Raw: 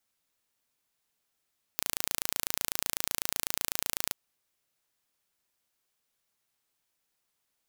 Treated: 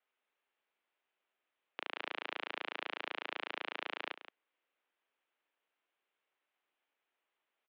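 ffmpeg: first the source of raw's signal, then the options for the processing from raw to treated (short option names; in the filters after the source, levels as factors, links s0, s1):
-f lavfi -i "aevalsrc='0.75*eq(mod(n,1575),0)':d=2.34:s=44100"
-af "aecho=1:1:171:0.251,highpass=f=380:t=q:w=0.5412,highpass=f=380:t=q:w=1.307,lowpass=f=3200:t=q:w=0.5176,lowpass=f=3200:t=q:w=0.7071,lowpass=f=3200:t=q:w=1.932,afreqshift=-63"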